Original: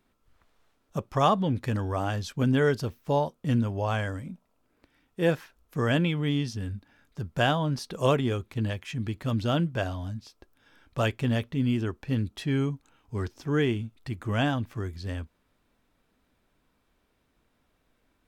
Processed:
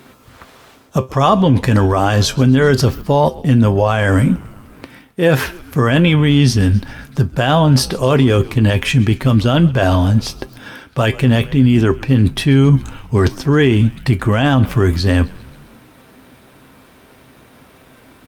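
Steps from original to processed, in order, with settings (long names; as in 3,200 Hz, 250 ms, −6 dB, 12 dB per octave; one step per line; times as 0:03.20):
reversed playback
downward compressor 8 to 1, threshold −36 dBFS, peak gain reduction 18.5 dB
reversed playback
high-pass filter 79 Hz 12 dB per octave
tuned comb filter 130 Hz, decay 0.17 s, harmonics all, mix 60%
on a send: echo with shifted repeats 132 ms, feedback 63%, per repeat −78 Hz, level −22 dB
on the sum: boost into a limiter +34.5 dB
level −1.5 dB
Opus 48 kbit/s 48,000 Hz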